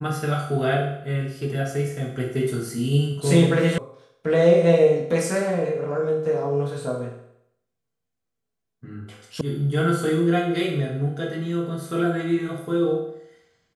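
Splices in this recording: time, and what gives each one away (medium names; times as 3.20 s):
3.78 s: sound stops dead
9.41 s: sound stops dead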